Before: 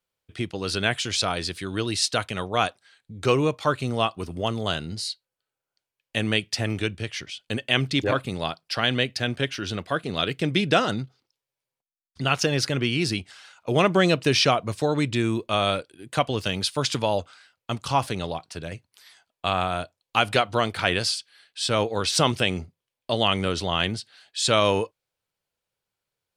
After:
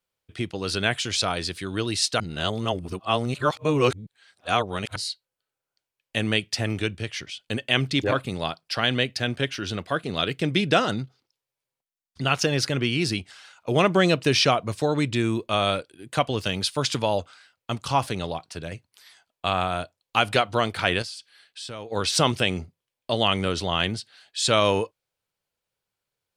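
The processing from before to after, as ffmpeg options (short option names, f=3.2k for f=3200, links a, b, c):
-filter_complex "[0:a]asettb=1/sr,asplit=3[a][b][c];[a]atrim=end=21.024[d];[b]atrim=start=21.02:end=21.92,asetpts=PTS-STARTPTS,afade=t=in:d=0.004:c=qsin,afade=t=out:st=0.896:d=0.004:c=qsin,acompressor=threshold=-37dB:ratio=3:attack=3.2:release=140:knee=1:detection=peak[e];[c]atrim=start=21.916[f];[d][e]acrossfade=d=0.004:c1=hsin:c2=qsin[g];[g][f]acrossfade=d=0.004:c1=qsin:c2=hsin,asplit=3[h][i][j];[h]atrim=end=2.202[k];[i]atrim=start=2.198:end=4.962,asetpts=PTS-STARTPTS,areverse[l];[j]atrim=start=4.958[m];[k][l]acrossfade=d=0.004:c1=hsin:c2=hsin[n];[n][m]acrossfade=d=0.004:c1=hsin:c2=hsin"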